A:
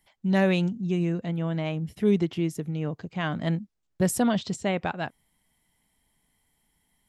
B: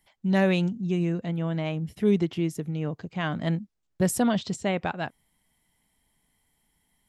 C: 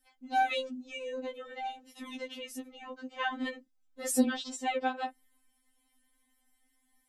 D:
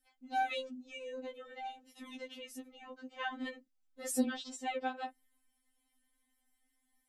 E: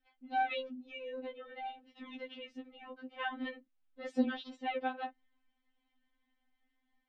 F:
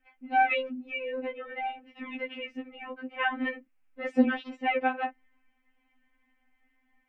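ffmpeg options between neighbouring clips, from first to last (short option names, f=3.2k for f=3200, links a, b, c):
-af anull
-af "afftfilt=real='re*3.46*eq(mod(b,12),0)':imag='im*3.46*eq(mod(b,12),0)':win_size=2048:overlap=0.75"
-af "bandreject=f=1k:w=22,volume=-5.5dB"
-af "lowpass=f=3.6k:w=0.5412,lowpass=f=3.6k:w=1.3066,volume=1dB"
-af "highshelf=f=3k:t=q:w=3:g=-7,volume=8dB"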